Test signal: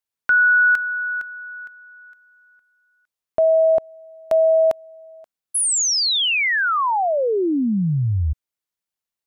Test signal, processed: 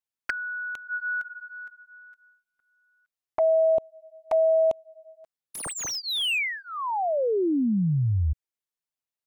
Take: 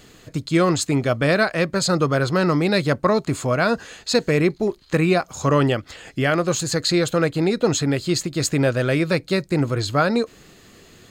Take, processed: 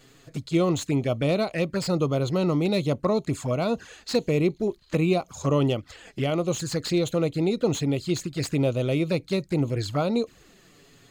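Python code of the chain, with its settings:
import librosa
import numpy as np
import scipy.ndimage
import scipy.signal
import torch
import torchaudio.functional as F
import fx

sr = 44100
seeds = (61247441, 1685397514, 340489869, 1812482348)

y = fx.env_flanger(x, sr, rest_ms=8.3, full_db=-17.0)
y = fx.slew_limit(y, sr, full_power_hz=260.0)
y = y * librosa.db_to_amplitude(-3.5)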